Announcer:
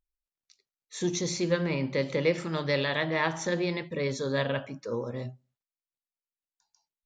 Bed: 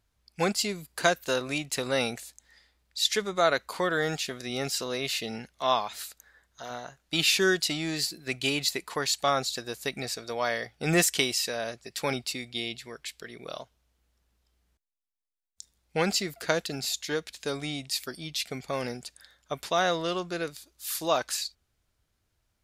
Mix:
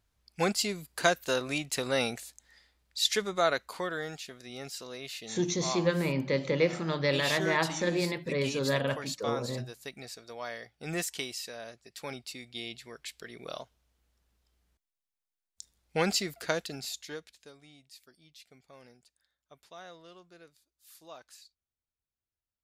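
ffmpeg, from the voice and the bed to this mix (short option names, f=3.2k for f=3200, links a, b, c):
-filter_complex "[0:a]adelay=4350,volume=-0.5dB[a];[1:a]volume=7.5dB,afade=t=out:st=3.24:d=0.88:silence=0.354813,afade=t=in:st=12.18:d=1.32:silence=0.354813,afade=t=out:st=16.15:d=1.38:silence=0.0891251[b];[a][b]amix=inputs=2:normalize=0"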